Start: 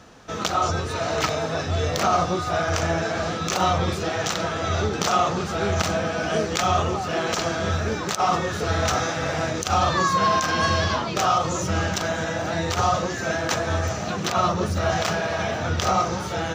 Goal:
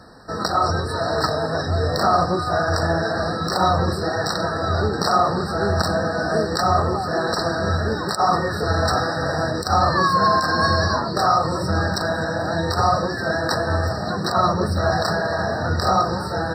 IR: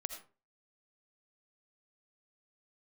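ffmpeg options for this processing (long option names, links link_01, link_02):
-af "equalizer=frequency=9200:width_type=o:width=2:gain=3,afftfilt=real='re*eq(mod(floor(b*sr/1024/1900),2),0)':imag='im*eq(mod(floor(b*sr/1024/1900),2),0)':win_size=1024:overlap=0.75,volume=3dB"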